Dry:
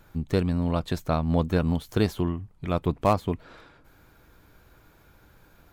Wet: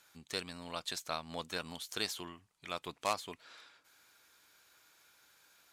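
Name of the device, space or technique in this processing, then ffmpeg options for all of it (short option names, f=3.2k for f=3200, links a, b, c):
piezo pickup straight into a mixer: -af "lowpass=7.6k,aderivative,volume=7dB"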